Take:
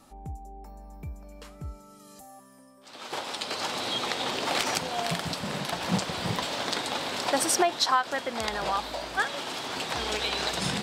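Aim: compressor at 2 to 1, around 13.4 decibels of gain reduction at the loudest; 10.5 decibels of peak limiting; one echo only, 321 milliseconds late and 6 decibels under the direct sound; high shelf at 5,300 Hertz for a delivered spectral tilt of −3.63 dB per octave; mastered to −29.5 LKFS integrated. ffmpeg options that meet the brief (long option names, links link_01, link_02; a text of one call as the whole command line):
ffmpeg -i in.wav -af "highshelf=frequency=5300:gain=7.5,acompressor=threshold=-43dB:ratio=2,alimiter=level_in=3.5dB:limit=-24dB:level=0:latency=1,volume=-3.5dB,aecho=1:1:321:0.501,volume=9dB" out.wav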